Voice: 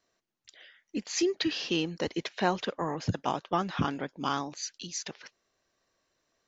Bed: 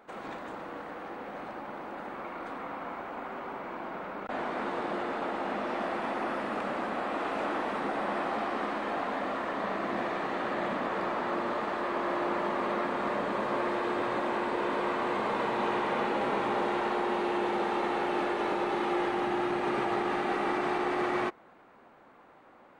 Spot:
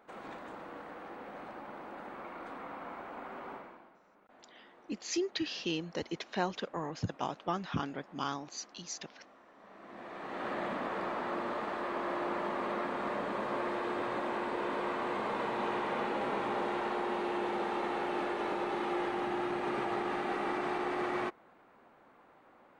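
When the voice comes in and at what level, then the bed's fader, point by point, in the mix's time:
3.95 s, -5.5 dB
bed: 3.54 s -5.5 dB
4 s -26.5 dB
9.54 s -26.5 dB
10.47 s -4.5 dB

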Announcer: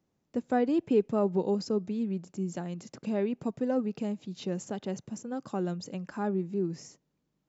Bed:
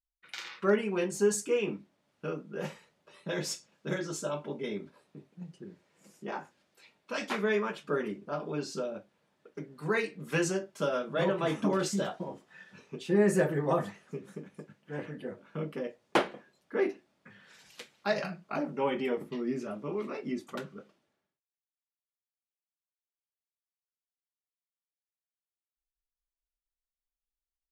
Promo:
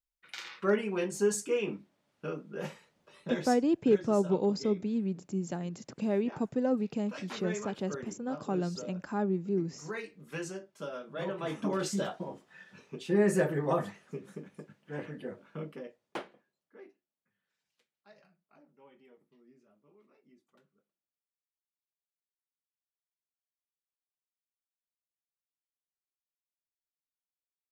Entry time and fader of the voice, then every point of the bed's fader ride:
2.95 s, 0.0 dB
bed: 3.3 s -1.5 dB
3.65 s -9.5 dB
11.03 s -9.5 dB
11.97 s -1 dB
15.41 s -1 dB
17.14 s -29 dB

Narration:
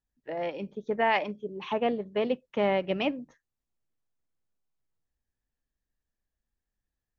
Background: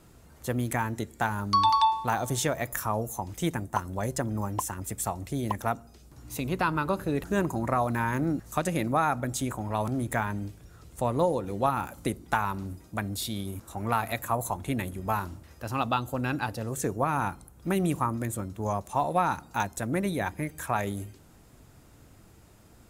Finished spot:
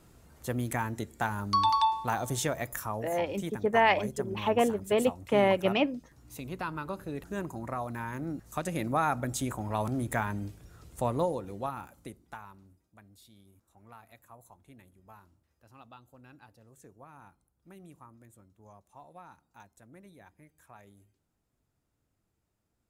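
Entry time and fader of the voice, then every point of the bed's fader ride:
2.75 s, +2.0 dB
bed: 2.58 s -3 dB
3.24 s -9 dB
8.19 s -9 dB
9.07 s -2 dB
11.07 s -2 dB
12.9 s -25 dB

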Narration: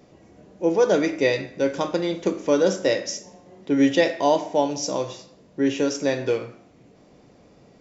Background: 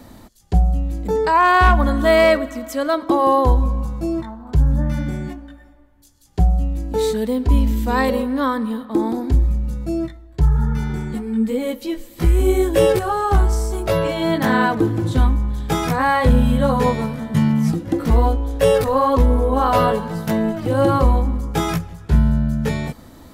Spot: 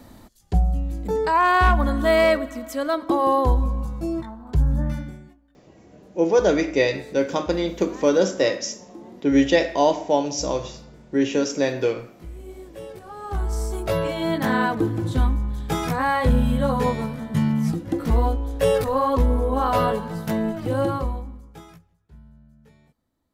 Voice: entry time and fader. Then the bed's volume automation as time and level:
5.55 s, +1.0 dB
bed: 4.9 s -4 dB
5.38 s -23.5 dB
12.93 s -23.5 dB
13.62 s -4.5 dB
20.74 s -4.5 dB
22.05 s -33 dB

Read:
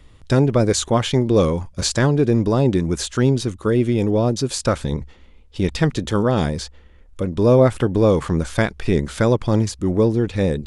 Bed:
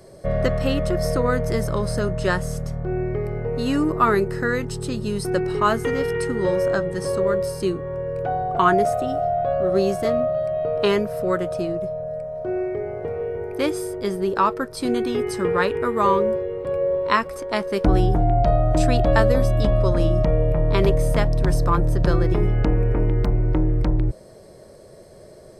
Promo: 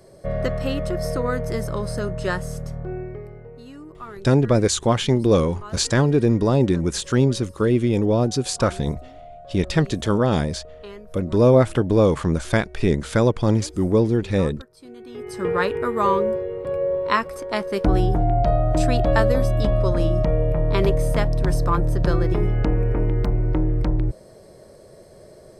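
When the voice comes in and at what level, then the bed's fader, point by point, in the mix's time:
3.95 s, -1.0 dB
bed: 2.81 s -3 dB
3.73 s -20 dB
14.96 s -20 dB
15.48 s -1 dB

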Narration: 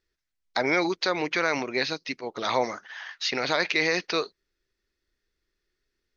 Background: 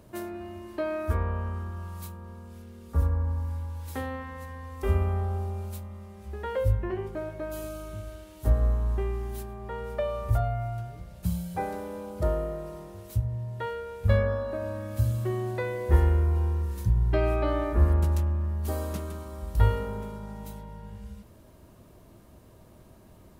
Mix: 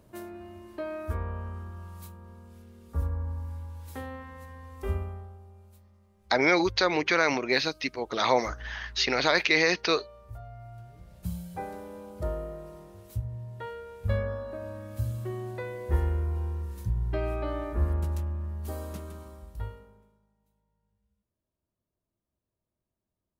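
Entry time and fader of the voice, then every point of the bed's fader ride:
5.75 s, +1.5 dB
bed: 4.9 s -5 dB
5.38 s -18.5 dB
10.34 s -18.5 dB
11.13 s -5.5 dB
19.27 s -5.5 dB
20.35 s -34.5 dB

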